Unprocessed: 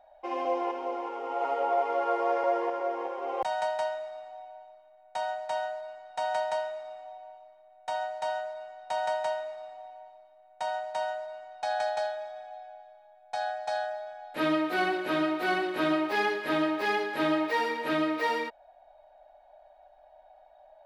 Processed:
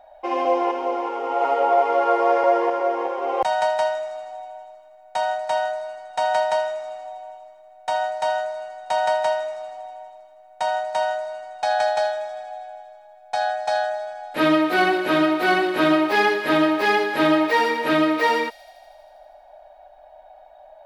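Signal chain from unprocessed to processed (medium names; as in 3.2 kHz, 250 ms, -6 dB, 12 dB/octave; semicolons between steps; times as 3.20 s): feedback echo behind a high-pass 80 ms, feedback 78%, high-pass 5.2 kHz, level -13 dB; trim +9 dB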